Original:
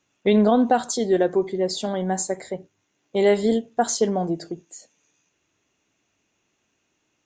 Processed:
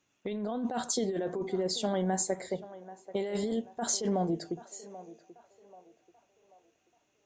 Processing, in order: compressor with a negative ratio -23 dBFS, ratio -1; band-passed feedback delay 785 ms, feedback 45%, band-pass 760 Hz, level -14 dB; trim -7.5 dB

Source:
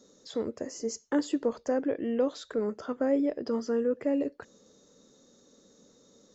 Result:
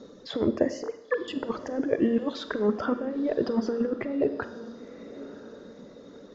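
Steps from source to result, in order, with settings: 0.83–1.28 s: formants replaced by sine waves; reverb removal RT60 1 s; compressor with a negative ratio -33 dBFS, ratio -0.5; distance through air 260 m; echo that smears into a reverb 1013 ms, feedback 41%, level -15.5 dB; Schroeder reverb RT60 0.86 s, combs from 32 ms, DRR 11 dB; trim +9 dB

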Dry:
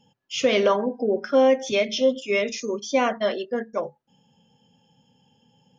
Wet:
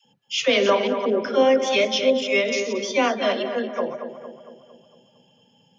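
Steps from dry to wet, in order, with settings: chunks repeated in reverse 175 ms, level -9 dB; high-pass 130 Hz; peaking EQ 3.2 kHz +5 dB 1.6 oct; phase dispersion lows, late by 57 ms, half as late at 530 Hz; on a send: filtered feedback delay 228 ms, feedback 54%, low-pass 2.3 kHz, level -8.5 dB

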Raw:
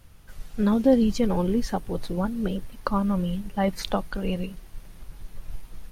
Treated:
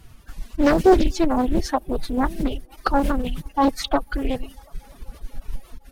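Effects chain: formant-preserving pitch shift +6 st; feedback echo behind a band-pass 247 ms, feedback 73%, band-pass 660 Hz, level -22.5 dB; reverb removal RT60 0.97 s; loudspeaker Doppler distortion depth 0.59 ms; trim +6.5 dB

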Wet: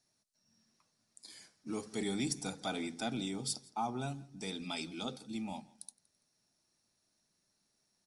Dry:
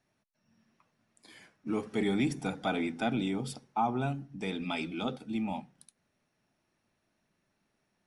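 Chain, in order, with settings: high-order bell 6.5 kHz +15.5 dB; feedback delay 167 ms, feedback 35%, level -24 dB; trim -7 dB

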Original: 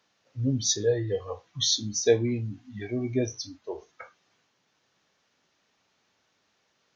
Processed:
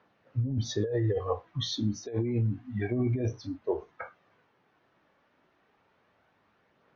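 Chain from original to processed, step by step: low-pass 1.7 kHz 12 dB/octave; compressor with a negative ratio -31 dBFS, ratio -1; phaser 0.29 Hz, delay 3.6 ms, feedback 24%; trim +2.5 dB

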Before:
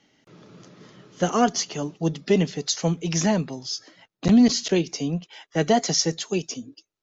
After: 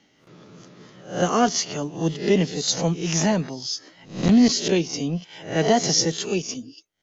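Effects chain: reverse spectral sustain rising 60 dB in 0.41 s

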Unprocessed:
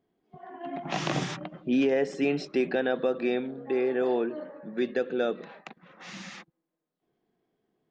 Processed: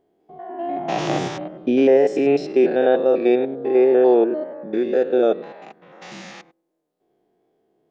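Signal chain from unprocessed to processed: spectrogram pixelated in time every 100 ms; wow and flutter 26 cents; high-order bell 520 Hz +8 dB; trim +5 dB

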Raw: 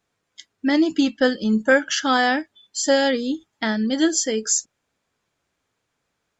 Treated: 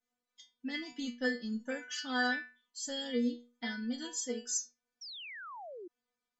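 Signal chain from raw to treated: inharmonic resonator 240 Hz, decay 0.37 s, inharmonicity 0.002; painted sound fall, 5.01–5.88 s, 330–5800 Hz -46 dBFS

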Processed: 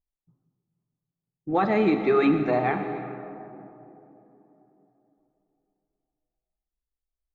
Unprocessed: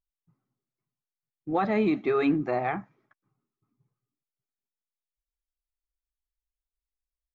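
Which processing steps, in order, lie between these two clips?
plate-style reverb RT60 3.7 s, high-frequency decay 0.8×, DRR 6.5 dB; level-controlled noise filter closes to 690 Hz, open at -26 dBFS; trim +3 dB

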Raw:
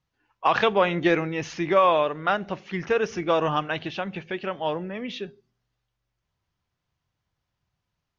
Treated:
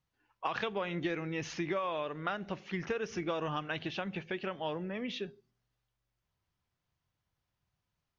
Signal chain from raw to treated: dynamic bell 750 Hz, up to -4 dB, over -34 dBFS, Q 0.9; compression 10:1, threshold -26 dBFS, peak gain reduction 10 dB; trim -4.5 dB

